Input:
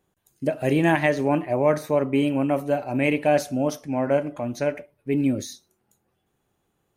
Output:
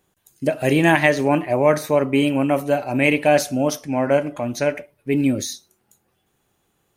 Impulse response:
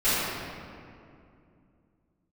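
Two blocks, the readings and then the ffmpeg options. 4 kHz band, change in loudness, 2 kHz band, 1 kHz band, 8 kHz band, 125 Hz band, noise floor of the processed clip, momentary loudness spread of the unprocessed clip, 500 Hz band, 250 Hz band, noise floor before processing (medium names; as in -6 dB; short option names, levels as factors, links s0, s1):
+8.0 dB, +4.0 dB, +7.0 dB, +4.5 dB, +9.0 dB, +3.0 dB, -69 dBFS, 8 LU, +4.0 dB, +3.0 dB, -74 dBFS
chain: -af "tiltshelf=f=1500:g=-3,volume=2"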